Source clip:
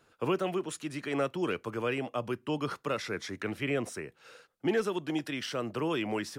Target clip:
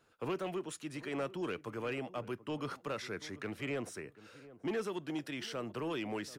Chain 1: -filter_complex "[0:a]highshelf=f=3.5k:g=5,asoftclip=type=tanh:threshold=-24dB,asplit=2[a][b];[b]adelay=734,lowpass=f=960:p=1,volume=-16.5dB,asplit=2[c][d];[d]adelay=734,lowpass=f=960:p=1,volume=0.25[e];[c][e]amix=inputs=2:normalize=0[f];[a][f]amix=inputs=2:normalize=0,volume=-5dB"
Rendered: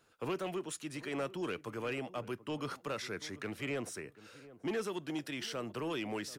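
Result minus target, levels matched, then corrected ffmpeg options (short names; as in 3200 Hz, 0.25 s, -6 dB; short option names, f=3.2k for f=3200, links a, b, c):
8000 Hz band +3.5 dB
-filter_complex "[0:a]asoftclip=type=tanh:threshold=-24dB,asplit=2[a][b];[b]adelay=734,lowpass=f=960:p=1,volume=-16.5dB,asplit=2[c][d];[d]adelay=734,lowpass=f=960:p=1,volume=0.25[e];[c][e]amix=inputs=2:normalize=0[f];[a][f]amix=inputs=2:normalize=0,volume=-5dB"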